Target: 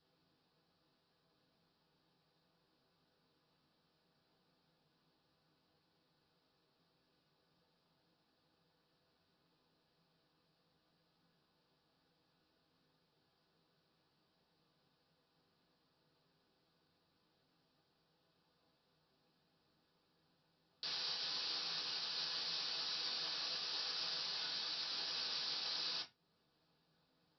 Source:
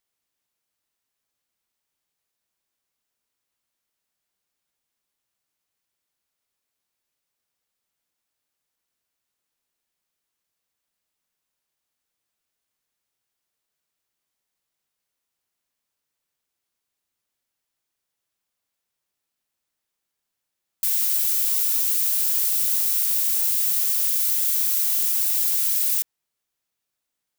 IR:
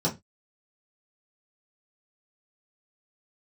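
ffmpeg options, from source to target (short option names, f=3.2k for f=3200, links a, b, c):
-filter_complex "[0:a]alimiter=limit=-20dB:level=0:latency=1:release=327,aresample=11025,asoftclip=type=tanh:threshold=-36.5dB,aresample=44100[a];[1:a]atrim=start_sample=2205[b];[a][b]afir=irnorm=-1:irlink=0,volume=-1dB"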